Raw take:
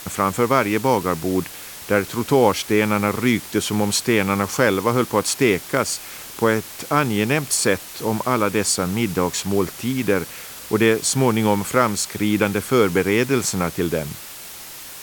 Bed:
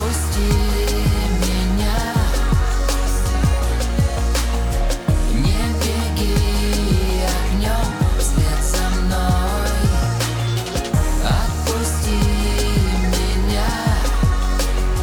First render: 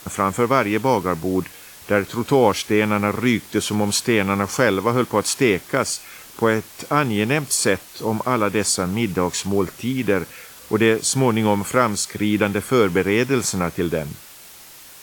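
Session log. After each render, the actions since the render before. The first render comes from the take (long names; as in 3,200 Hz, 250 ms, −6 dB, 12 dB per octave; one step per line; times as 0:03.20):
noise reduction from a noise print 6 dB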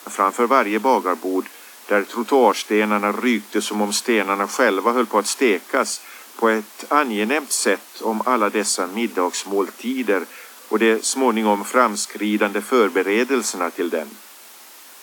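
Chebyshev high-pass filter 210 Hz, order 8
parametric band 1,000 Hz +4 dB 1.4 octaves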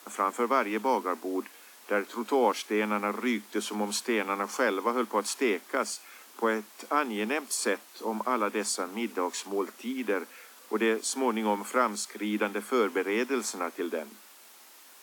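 level −10 dB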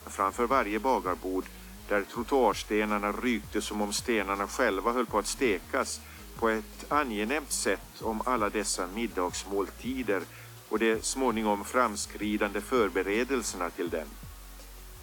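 mix in bed −30 dB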